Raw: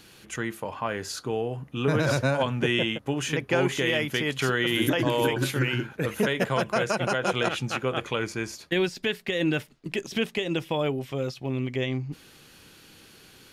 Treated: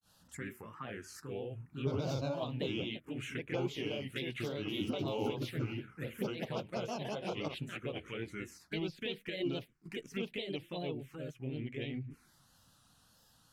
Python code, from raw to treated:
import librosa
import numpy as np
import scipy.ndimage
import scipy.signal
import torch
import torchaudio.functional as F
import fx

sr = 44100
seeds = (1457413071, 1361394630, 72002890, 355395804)

y = fx.granulator(x, sr, seeds[0], grain_ms=179.0, per_s=19.0, spray_ms=22.0, spread_st=3)
y = fx.env_phaser(y, sr, low_hz=360.0, high_hz=1800.0, full_db=-24.5)
y = F.gain(torch.from_numpy(y), -7.0).numpy()